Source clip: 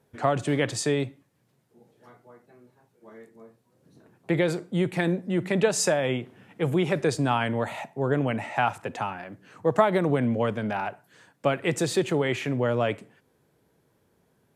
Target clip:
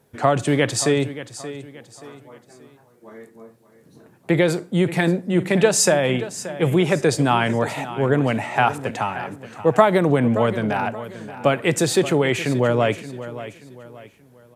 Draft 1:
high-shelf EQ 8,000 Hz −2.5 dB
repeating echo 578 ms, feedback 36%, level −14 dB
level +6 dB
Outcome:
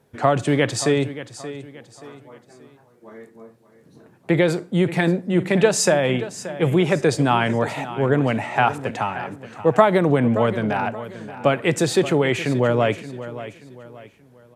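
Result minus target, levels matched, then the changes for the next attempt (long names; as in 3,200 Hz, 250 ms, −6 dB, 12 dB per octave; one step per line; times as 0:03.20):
8,000 Hz band −3.5 dB
change: high-shelf EQ 8,000 Hz +5.5 dB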